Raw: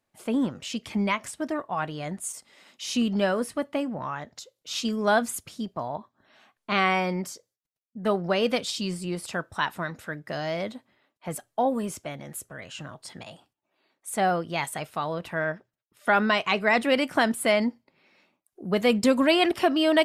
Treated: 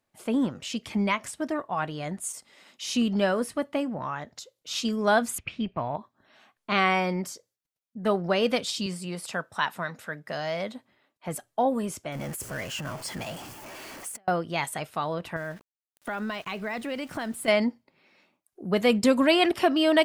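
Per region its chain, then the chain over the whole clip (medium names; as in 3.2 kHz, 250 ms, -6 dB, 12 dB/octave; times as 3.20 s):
5.38–5.96 s: resonant low-pass 2.5 kHz, resonance Q 7.3 + bass shelf 110 Hz +11.5 dB
8.86–10.74 s: high-pass 160 Hz + peaking EQ 330 Hz -8 dB 0.38 oct
12.12–14.28 s: jump at every zero crossing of -39.5 dBFS + peaking EQ 3.8 kHz -9.5 dB 0.21 oct + compressor with a negative ratio -36 dBFS, ratio -0.5
15.36–17.48 s: compression 2.5:1, threshold -35 dBFS + bass shelf 130 Hz +11 dB + small samples zeroed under -48 dBFS
whole clip: none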